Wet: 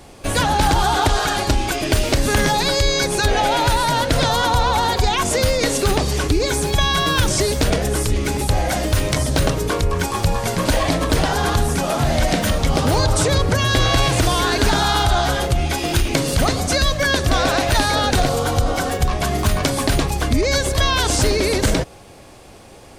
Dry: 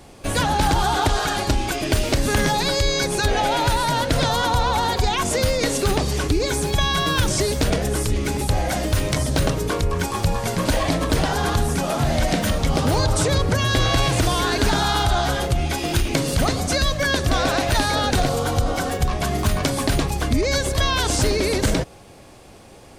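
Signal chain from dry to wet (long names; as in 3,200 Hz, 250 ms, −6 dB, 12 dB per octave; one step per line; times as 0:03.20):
parametric band 180 Hz −2 dB 1.6 octaves
level +3 dB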